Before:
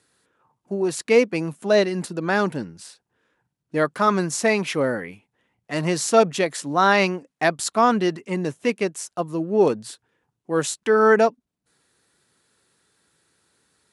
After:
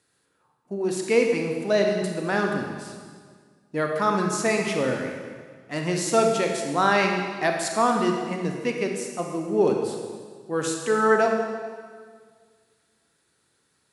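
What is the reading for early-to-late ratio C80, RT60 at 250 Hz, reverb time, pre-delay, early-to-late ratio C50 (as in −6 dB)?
5.5 dB, 2.0 s, 1.8 s, 31 ms, 3.5 dB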